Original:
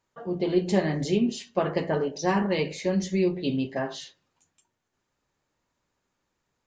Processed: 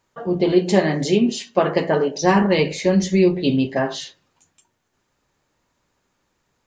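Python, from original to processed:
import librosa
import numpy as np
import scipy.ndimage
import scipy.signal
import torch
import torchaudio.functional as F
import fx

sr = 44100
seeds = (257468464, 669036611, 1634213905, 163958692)

y = fx.highpass(x, sr, hz=190.0, slope=6, at=(0.52, 2.22))
y = y * 10.0 ** (8.5 / 20.0)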